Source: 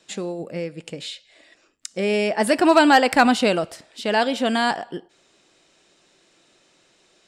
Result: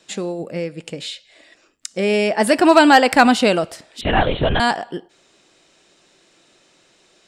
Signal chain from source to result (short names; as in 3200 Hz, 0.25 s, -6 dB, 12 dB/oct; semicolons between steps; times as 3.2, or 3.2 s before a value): 4.01–4.6 LPC vocoder at 8 kHz whisper; gain +3.5 dB